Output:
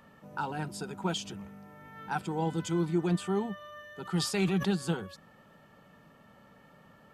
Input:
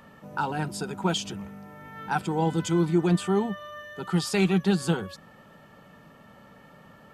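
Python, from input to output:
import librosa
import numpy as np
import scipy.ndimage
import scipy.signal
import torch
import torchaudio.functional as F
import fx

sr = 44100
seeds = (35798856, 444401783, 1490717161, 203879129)

y = fx.sustainer(x, sr, db_per_s=78.0, at=(4.05, 4.67), fade=0.02)
y = F.gain(torch.from_numpy(y), -6.0).numpy()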